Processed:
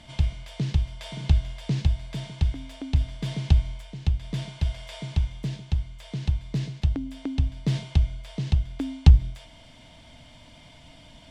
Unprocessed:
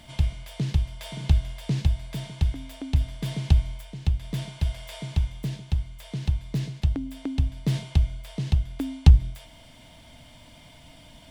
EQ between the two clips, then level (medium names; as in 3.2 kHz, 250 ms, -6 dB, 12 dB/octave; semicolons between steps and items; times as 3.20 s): distance through air 92 m; treble shelf 6 kHz +10 dB; 0.0 dB